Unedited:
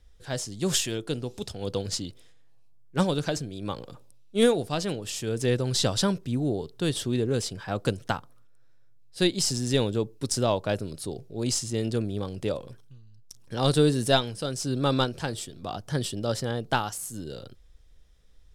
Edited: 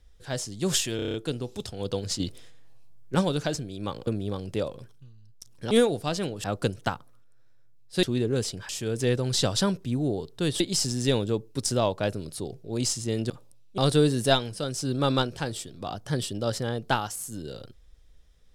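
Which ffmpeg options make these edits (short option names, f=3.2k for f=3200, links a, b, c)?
-filter_complex "[0:a]asplit=17[a][b][c][d][e][f][g][h][i][j][k][l][m][n][o][p][q];[a]atrim=end=0.992[r];[b]atrim=start=0.958:end=0.992[s];[c]atrim=start=0.958:end=0.992[t];[d]atrim=start=0.958:end=0.992[u];[e]atrim=start=0.958:end=0.992[v];[f]atrim=start=0.958:end=0.992[w];[g]atrim=start=0.958:end=2.022[x];[h]atrim=start=2.018:end=2.972,asetpts=PTS-STARTPTS,volume=7dB[y];[i]atrim=start=2.968:end=3.892[z];[j]atrim=start=11.958:end=13.602[aa];[k]atrim=start=4.368:end=5.102[ab];[l]atrim=start=7.668:end=9.262[ac];[m]atrim=start=7.008:end=7.672[ad];[n]atrim=start=5.098:end=7.012[ae];[o]atrim=start=9.258:end=11.962[af];[p]atrim=start=3.888:end=4.372[ag];[q]atrim=start=13.598[ah];[r][s]acrossfade=d=0.004:c1=hsin:c2=hsin[ai];[ai][t]acrossfade=d=0.004:c1=hsin:c2=hsin[aj];[aj][u]acrossfade=d=0.004:c1=hsin:c2=hsin[ak];[ak][v]acrossfade=d=0.004:c1=hsin:c2=hsin[al];[al][w]acrossfade=d=0.004:c1=hsin:c2=hsin[am];[am][x]acrossfade=d=0.004:c1=hsin:c2=hsin[an];[an][y]acrossfade=d=0.004:c1=hsin:c2=hsin[ao];[ao][z]acrossfade=d=0.004:c1=hsin:c2=hsin[ap];[ap][aa]acrossfade=d=0.004:c1=hsin:c2=hsin[aq];[aq][ab]acrossfade=d=0.004:c1=hsin:c2=hsin[ar];[ar][ac]acrossfade=d=0.004:c1=hsin:c2=hsin[as];[as][ad]acrossfade=d=0.004:c1=hsin:c2=hsin[at];[at][ae]acrossfade=d=0.004:c1=hsin:c2=hsin[au];[au][af]acrossfade=d=0.004:c1=hsin:c2=hsin[av];[av][ag]acrossfade=d=0.004:c1=hsin:c2=hsin[aw];[aw][ah]acrossfade=d=0.004:c1=hsin:c2=hsin"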